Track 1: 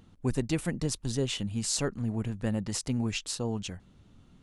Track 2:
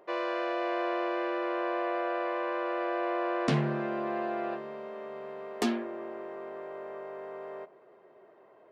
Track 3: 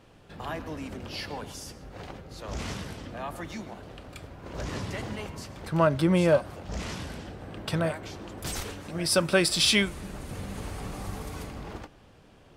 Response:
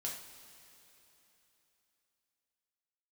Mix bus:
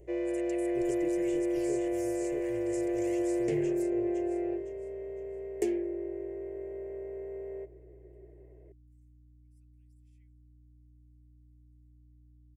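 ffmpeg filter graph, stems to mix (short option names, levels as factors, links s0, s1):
-filter_complex "[0:a]volume=0.708,asplit=3[s0][s1][s2];[s1]volume=0.237[s3];[1:a]highshelf=f=5300:g=8,aeval=exprs='val(0)+0.00141*(sin(2*PI*60*n/s)+sin(2*PI*2*60*n/s)/2+sin(2*PI*3*60*n/s)/3+sin(2*PI*4*60*n/s)/4+sin(2*PI*5*60*n/s)/5)':c=same,volume=0.501[s4];[2:a]highshelf=f=7900:g=11.5,aphaser=in_gain=1:out_gain=1:delay=3.6:decay=0.73:speed=0.31:type=sinusoidal,adelay=450,volume=0.596[s5];[s2]apad=whole_len=573963[s6];[s5][s6]sidechaingate=range=0.00178:threshold=0.00398:ratio=16:detection=peak[s7];[s0][s7]amix=inputs=2:normalize=0,highpass=f=1200:w=0.5412,highpass=f=1200:w=1.3066,acompressor=threshold=0.00631:ratio=5,volume=1[s8];[s3]aecho=0:1:510|1020|1530|2040|2550:1|0.33|0.109|0.0359|0.0119[s9];[s4][s8][s9]amix=inputs=3:normalize=0,aeval=exprs='val(0)+0.00158*(sin(2*PI*60*n/s)+sin(2*PI*2*60*n/s)/2+sin(2*PI*3*60*n/s)/3+sin(2*PI*4*60*n/s)/4+sin(2*PI*5*60*n/s)/5)':c=same,firequalizer=gain_entry='entry(110,0);entry(230,-16);entry(350,13);entry(590,0);entry(1200,-24);entry(2000,0);entry(3800,-19);entry(7100,0);entry(12000,-5)':delay=0.05:min_phase=1"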